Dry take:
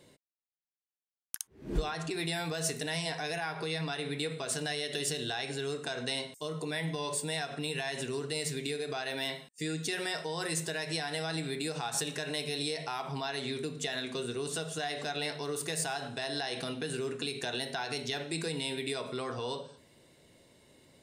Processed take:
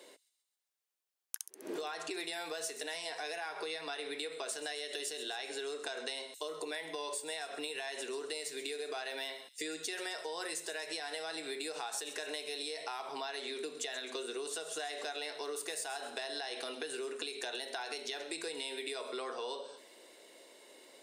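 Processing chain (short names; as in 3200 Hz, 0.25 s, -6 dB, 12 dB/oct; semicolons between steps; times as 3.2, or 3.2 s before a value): HPF 350 Hz 24 dB/oct; compressor, threshold -43 dBFS, peak gain reduction 14 dB; on a send: thin delay 0.132 s, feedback 51%, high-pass 4600 Hz, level -12 dB; on the sum: gain +5.5 dB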